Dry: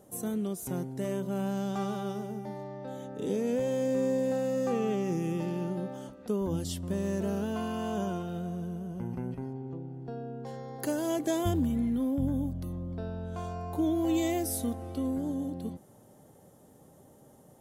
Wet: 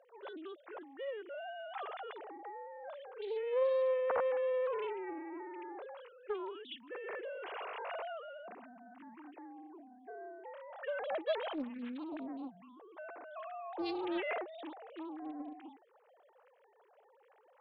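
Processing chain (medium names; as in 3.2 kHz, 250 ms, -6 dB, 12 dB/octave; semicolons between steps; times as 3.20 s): formants replaced by sine waves; high-pass 740 Hz 12 dB/octave; loudspeaker Doppler distortion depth 0.42 ms; trim +1.5 dB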